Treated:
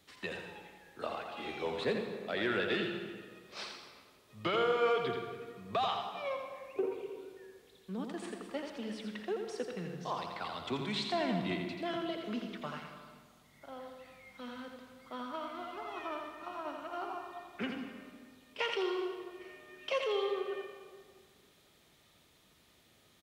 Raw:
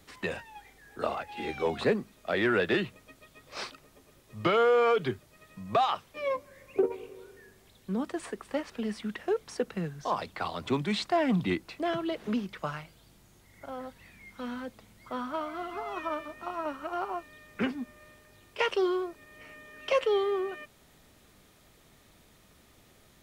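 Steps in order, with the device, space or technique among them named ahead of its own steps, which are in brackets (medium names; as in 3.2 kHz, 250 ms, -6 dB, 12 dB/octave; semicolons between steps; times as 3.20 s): PA in a hall (high-pass 100 Hz 6 dB/octave; peaking EQ 3.5 kHz +5.5 dB 0.99 oct; delay 84 ms -6 dB; reverberation RT60 1.7 s, pre-delay 107 ms, DRR 7 dB); trim -8 dB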